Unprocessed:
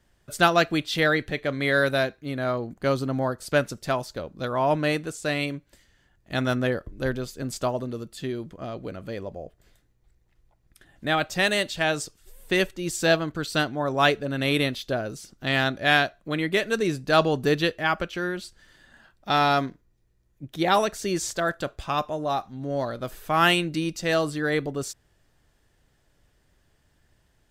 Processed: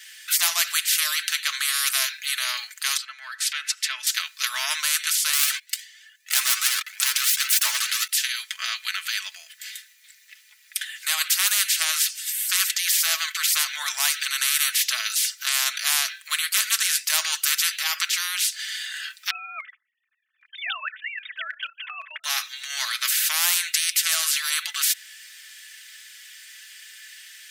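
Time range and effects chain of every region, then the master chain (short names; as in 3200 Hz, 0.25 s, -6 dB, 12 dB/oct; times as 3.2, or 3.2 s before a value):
2.97–4.07 RIAA curve playback + compressor 8:1, threshold -31 dBFS
5.33–8.09 low shelf 300 Hz -11.5 dB + sample leveller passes 3 + cascading flanger rising 1.7 Hz
19.3–22.24 sine-wave speech + LPF 2000 Hz + level quantiser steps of 15 dB
whole clip: steep high-pass 1800 Hz 36 dB/oct; comb 4.6 ms, depth 61%; spectral compressor 10:1; gain +6 dB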